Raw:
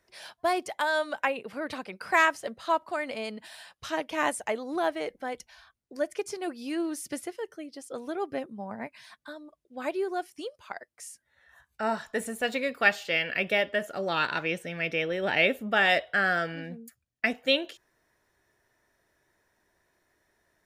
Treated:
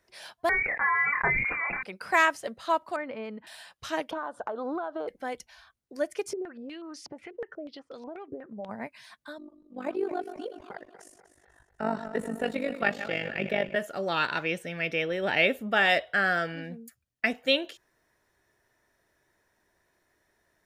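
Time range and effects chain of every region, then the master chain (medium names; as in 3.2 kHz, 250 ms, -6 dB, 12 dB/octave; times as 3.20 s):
0.49–1.83 s: doubling 28 ms -5 dB + frequency inversion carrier 2.6 kHz + decay stretcher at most 27 dB/s
2.96–3.47 s: low-pass 1.7 kHz + peaking EQ 700 Hz -9.5 dB 0.23 oct
4.11–5.08 s: FFT filter 120 Hz 0 dB, 1.5 kHz +13 dB, 2.1 kHz -23 dB, 3.5 kHz -2 dB, 6 kHz -17 dB, 14 kHz -27 dB + compression 20:1, threshold -29 dBFS
6.33–8.69 s: compression 16:1, threshold -39 dBFS + step-sequenced low-pass 8.2 Hz 420–4800 Hz
9.38–13.76 s: backward echo that repeats 123 ms, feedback 66%, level -11 dB + tilt EQ -2.5 dB/octave + AM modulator 49 Hz, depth 65%
whole clip: none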